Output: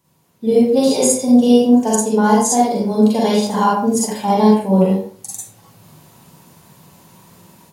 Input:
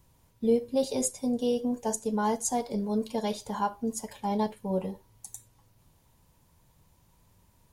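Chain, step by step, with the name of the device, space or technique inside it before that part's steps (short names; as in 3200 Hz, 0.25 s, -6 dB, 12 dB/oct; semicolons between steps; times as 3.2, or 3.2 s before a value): far laptop microphone (reverb RT60 0.45 s, pre-delay 39 ms, DRR -5 dB; HPF 180 Hz 12 dB/oct; AGC gain up to 14.5 dB)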